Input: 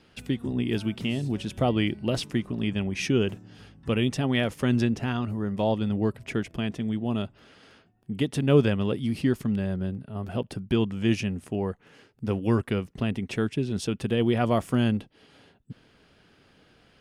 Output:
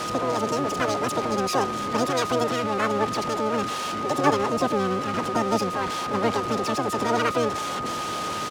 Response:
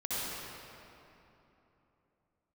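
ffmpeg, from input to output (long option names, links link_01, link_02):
-filter_complex "[0:a]aeval=exprs='val(0)+0.5*0.0708*sgn(val(0))':channel_layout=same,highpass=50,areverse,acompressor=mode=upward:threshold=-27dB:ratio=2.5,areverse,aeval=exprs='val(0)*gte(abs(val(0)),0.00668)':channel_layout=same,asplit=4[link_01][link_02][link_03][link_04];[link_02]asetrate=22050,aresample=44100,atempo=2,volume=-7dB[link_05];[link_03]asetrate=58866,aresample=44100,atempo=0.749154,volume=-5dB[link_06];[link_04]asetrate=88200,aresample=44100,atempo=0.5,volume=-9dB[link_07];[link_01][link_05][link_06][link_07]amix=inputs=4:normalize=0,aeval=exprs='val(0)+0.0631*sin(2*PI*620*n/s)':channel_layout=same,asetrate=88200,aresample=44100,acrossover=split=780[link_08][link_09];[link_09]adynamicsmooth=sensitivity=3:basefreq=5500[link_10];[link_08][link_10]amix=inputs=2:normalize=0,volume=-4.5dB"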